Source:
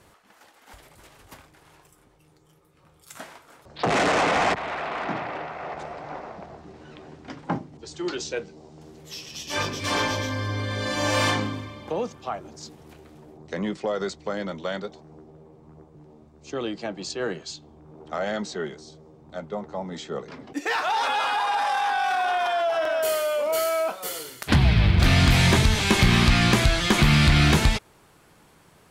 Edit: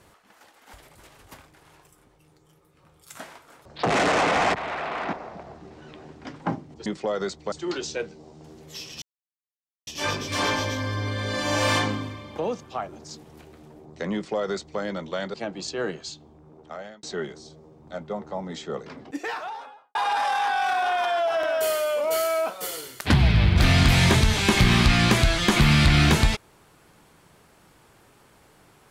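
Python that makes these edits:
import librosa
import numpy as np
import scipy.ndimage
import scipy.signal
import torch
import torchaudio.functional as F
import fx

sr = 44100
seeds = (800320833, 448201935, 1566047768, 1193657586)

y = fx.studio_fade_out(x, sr, start_s=20.29, length_s=1.08)
y = fx.edit(y, sr, fx.cut(start_s=5.13, length_s=1.03),
    fx.insert_silence(at_s=9.39, length_s=0.85),
    fx.duplicate(start_s=13.66, length_s=0.66, to_s=7.89),
    fx.cut(start_s=14.86, length_s=1.9),
    fx.fade_out_span(start_s=17.34, length_s=1.11, curve='qsin'), tone=tone)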